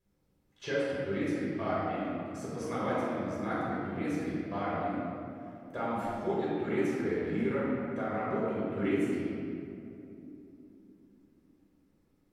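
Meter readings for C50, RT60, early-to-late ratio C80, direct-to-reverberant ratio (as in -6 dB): -3.5 dB, 2.9 s, -1.5 dB, -8.5 dB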